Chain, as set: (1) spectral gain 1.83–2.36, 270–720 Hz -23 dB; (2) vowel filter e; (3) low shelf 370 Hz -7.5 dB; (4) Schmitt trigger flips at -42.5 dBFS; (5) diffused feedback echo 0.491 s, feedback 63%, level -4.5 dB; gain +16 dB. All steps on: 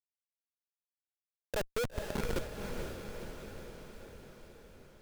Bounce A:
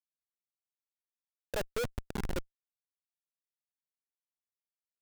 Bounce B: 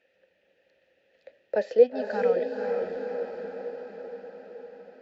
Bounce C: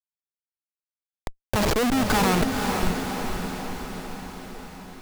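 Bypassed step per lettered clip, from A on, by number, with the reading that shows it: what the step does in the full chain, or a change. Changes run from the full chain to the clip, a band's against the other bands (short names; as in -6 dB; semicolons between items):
5, echo-to-direct -2.5 dB to none; 4, crest factor change +3.5 dB; 2, 500 Hz band -5.5 dB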